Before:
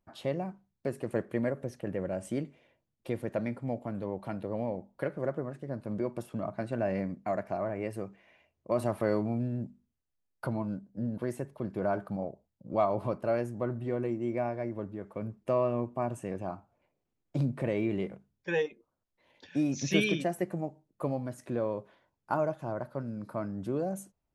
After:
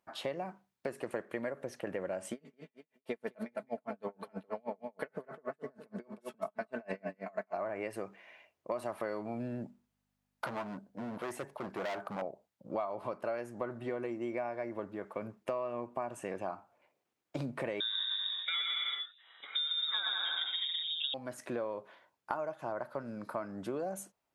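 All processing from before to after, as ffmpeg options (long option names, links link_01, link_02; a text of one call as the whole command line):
ffmpeg -i in.wav -filter_complex "[0:a]asettb=1/sr,asplit=3[link_01][link_02][link_03];[link_01]atrim=end=2.324[link_04];[link_02]atrim=start=2.32:end=7.54,asetpts=PTS-STARTPTS,afade=type=in:duration=0.004:curve=qsin,afade=type=out:start_time=5.216:duration=0.004:curve=qsin,aecho=1:1:4.6:0.64,atrim=end_sample=230202,aecho=1:1:210|420|630:0.376|0.0789|0.0166,atrim=end_sample=230202,aeval=exprs='val(0)*pow(10,-38*(0.5-0.5*cos(2*PI*6.3*n/s))/20)':channel_layout=same[link_05];[link_03]atrim=start=7.536[link_06];[link_04][link_05]acrossfade=duration=0.004:curve1=hsin:curve2=qsin[link_07];[link_07][link_06]acrossfade=duration=0.004:curve1=qsin:curve2=hsin,asettb=1/sr,asplit=3[link_08][link_09][link_10];[link_08]atrim=end=9.654[link_11];[link_09]atrim=start=9.65:end=12.22,asetpts=PTS-STARTPTS,afade=type=in:duration=0.004:curve=qsin,afade=type=out:start_time=2.566:duration=0.004:curve=qsin,equalizer=frequency=790:width=1.8:gain=5,asoftclip=type=hard:threshold=-33dB,aeval=exprs='val(0)+0.000251*(sin(2*PI*50*n/s)+sin(2*PI*2*50*n/s)/2+sin(2*PI*3*50*n/s)/3+sin(2*PI*4*50*n/s)/4+sin(2*PI*5*50*n/s)/5)':channel_layout=same[link_12];[link_10]atrim=start=12.216[link_13];[link_11][link_12]acrossfade=duration=0.004:curve1=hsin:curve2=qsin[link_14];[link_14][link_13]acrossfade=duration=0.004:curve1=qsin:curve2=hsin,asettb=1/sr,asplit=3[link_15][link_16][link_17];[link_15]atrim=end=17.804[link_18];[link_16]atrim=start=17.8:end=21.14,asetpts=PTS-STARTPTS,afade=type=in:duration=0.004:curve=qsin,afade=type=out:start_time=3.336:duration=0.004:curve=qsin,aecho=1:1:120|210|277.5|328.1|366.1|394.6:0.794|0.631|0.501|0.398|0.316|0.251,atrim=end_sample=147294,lowpass=frequency=3300:width_type=q:width=0.5098,lowpass=frequency=3300:width_type=q:width=0.6013,lowpass=frequency=3300:width_type=q:width=0.9,lowpass=frequency=3300:width_type=q:width=2.563,afreqshift=-3900[link_19];[link_17]atrim=start=21.136[link_20];[link_18][link_19]acrossfade=duration=0.004:curve1=hsin:curve2=qsin[link_21];[link_21][link_20]acrossfade=duration=0.004:curve1=qsin:curve2=hsin,highpass=frequency=1300:poles=1,highshelf=frequency=2800:gain=-9,acompressor=threshold=-45dB:ratio=6,volume=11.5dB" out.wav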